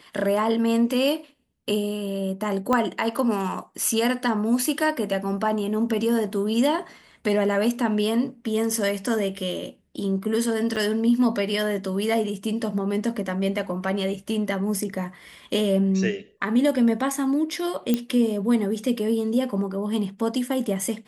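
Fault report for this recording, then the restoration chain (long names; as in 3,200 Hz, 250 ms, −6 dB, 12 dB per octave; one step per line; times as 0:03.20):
0:02.73: click −11 dBFS
0:10.76–0:10.77: drop-out 6.2 ms
0:17.94: click −9 dBFS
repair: click removal
repair the gap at 0:10.76, 6.2 ms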